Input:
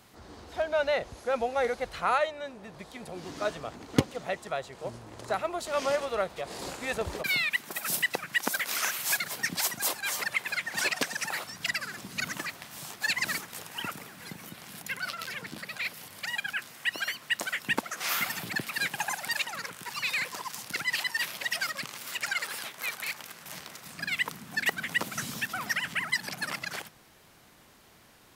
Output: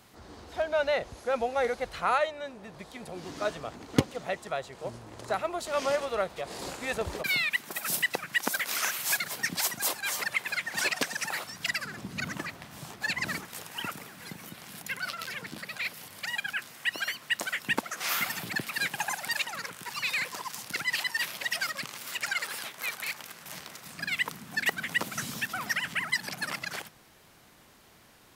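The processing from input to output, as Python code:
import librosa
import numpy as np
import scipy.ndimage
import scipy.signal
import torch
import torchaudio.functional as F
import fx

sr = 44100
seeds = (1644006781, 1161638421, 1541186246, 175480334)

y = fx.tilt_eq(x, sr, slope=-2.0, at=(11.84, 13.45))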